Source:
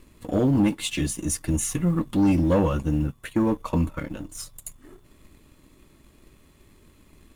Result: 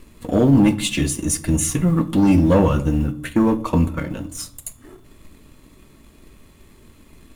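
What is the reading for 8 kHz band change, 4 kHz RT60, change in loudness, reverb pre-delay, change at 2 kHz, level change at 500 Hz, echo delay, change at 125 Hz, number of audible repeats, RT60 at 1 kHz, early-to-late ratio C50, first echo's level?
+6.0 dB, 0.35 s, +6.0 dB, 4 ms, +6.0 dB, +5.5 dB, no echo audible, +6.0 dB, no echo audible, 0.50 s, 17.5 dB, no echo audible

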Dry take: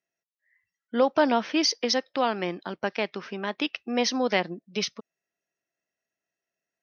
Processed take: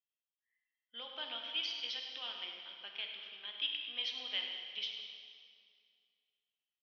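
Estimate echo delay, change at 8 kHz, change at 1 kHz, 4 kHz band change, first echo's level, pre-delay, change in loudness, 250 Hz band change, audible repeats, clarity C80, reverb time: 101 ms, can't be measured, −25.0 dB, −5.0 dB, −11.0 dB, 5 ms, −12.5 dB, −35.5 dB, 1, 3.5 dB, 2.2 s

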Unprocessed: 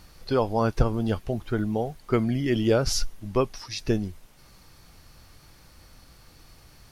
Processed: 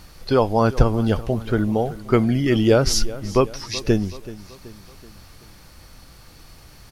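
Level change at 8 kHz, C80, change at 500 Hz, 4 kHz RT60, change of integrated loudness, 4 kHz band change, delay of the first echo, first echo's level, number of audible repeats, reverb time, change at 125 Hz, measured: +6.0 dB, no reverb audible, +6.0 dB, no reverb audible, +6.0 dB, +6.0 dB, 379 ms, −17.5 dB, 3, no reverb audible, +6.0 dB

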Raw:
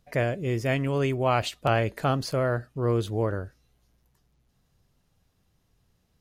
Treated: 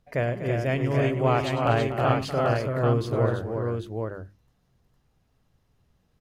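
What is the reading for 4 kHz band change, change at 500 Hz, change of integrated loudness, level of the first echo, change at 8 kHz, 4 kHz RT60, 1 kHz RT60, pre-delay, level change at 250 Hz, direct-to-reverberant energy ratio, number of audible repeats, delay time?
−1.5 dB, +2.5 dB, +1.5 dB, −13.5 dB, can't be measured, no reverb audible, no reverb audible, no reverb audible, +2.0 dB, no reverb audible, 4, 101 ms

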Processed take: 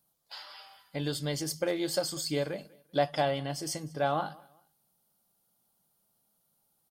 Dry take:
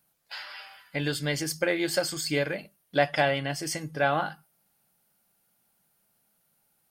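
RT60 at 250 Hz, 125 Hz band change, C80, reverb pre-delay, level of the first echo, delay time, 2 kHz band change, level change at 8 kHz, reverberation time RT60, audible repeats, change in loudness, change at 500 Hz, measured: no reverb audible, −3.0 dB, no reverb audible, no reverb audible, −23.5 dB, 194 ms, −11.0 dB, −3.0 dB, no reverb audible, 2, −4.0 dB, −3.0 dB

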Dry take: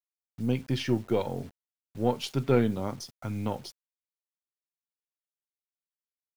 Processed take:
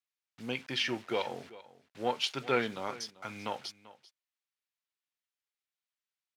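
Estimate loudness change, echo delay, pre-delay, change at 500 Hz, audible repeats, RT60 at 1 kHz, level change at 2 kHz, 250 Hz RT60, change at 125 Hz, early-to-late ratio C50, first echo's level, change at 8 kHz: −4.5 dB, 390 ms, no reverb audible, −5.5 dB, 1, no reverb audible, +5.5 dB, no reverb audible, −17.0 dB, no reverb audible, −18.5 dB, −0.5 dB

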